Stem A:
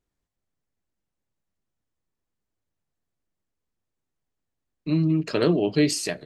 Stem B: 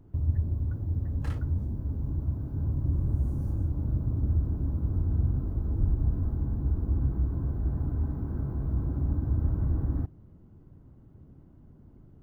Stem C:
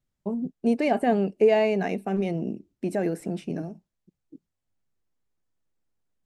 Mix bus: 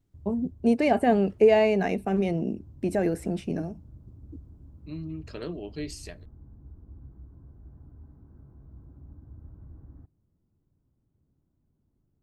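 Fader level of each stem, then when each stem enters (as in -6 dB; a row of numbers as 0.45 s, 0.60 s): -15.0 dB, -20.0 dB, +1.0 dB; 0.00 s, 0.00 s, 0.00 s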